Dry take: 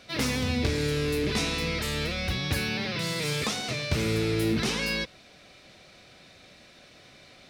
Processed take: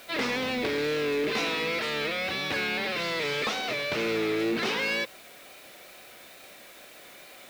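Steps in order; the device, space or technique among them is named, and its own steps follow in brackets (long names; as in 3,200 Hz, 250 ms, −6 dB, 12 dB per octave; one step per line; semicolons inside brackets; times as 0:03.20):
tape answering machine (band-pass filter 360–3,300 Hz; soft clipping −25 dBFS, distortion −19 dB; tape wow and flutter; white noise bed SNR 23 dB)
level +5 dB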